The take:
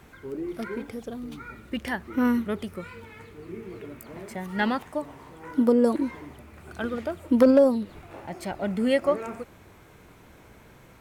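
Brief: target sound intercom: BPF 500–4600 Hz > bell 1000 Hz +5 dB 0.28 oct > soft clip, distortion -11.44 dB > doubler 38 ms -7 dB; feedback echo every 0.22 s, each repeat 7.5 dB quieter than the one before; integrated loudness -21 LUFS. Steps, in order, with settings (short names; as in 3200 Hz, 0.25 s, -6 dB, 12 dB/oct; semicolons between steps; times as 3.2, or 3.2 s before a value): BPF 500–4600 Hz; bell 1000 Hz +5 dB 0.28 oct; feedback echo 0.22 s, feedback 42%, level -7.5 dB; soft clip -20 dBFS; doubler 38 ms -7 dB; gain +11 dB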